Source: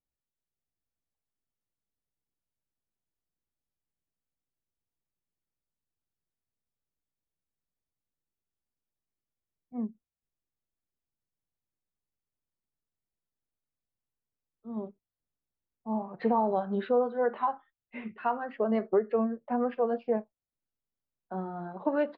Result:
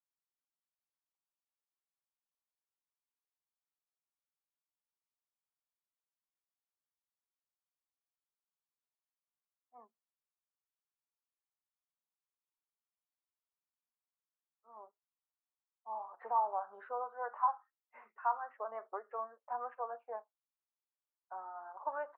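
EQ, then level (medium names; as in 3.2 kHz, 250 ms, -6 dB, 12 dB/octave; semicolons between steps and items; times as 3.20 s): ladder high-pass 710 Hz, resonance 25%; four-pole ladder low-pass 1.5 kHz, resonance 30%; +6.5 dB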